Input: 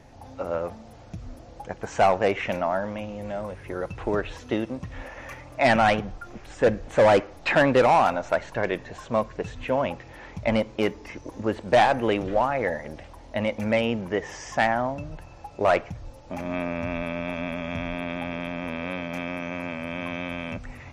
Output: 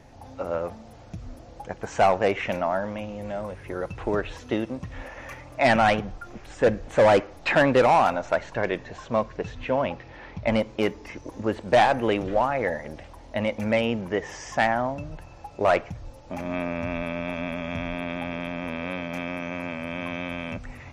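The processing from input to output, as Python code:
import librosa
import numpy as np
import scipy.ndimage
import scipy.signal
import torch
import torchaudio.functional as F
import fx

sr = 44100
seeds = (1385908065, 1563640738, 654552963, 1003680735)

y = fx.lowpass(x, sr, hz=fx.line((8.26, 8800.0), (10.45, 5100.0)), slope=24, at=(8.26, 10.45), fade=0.02)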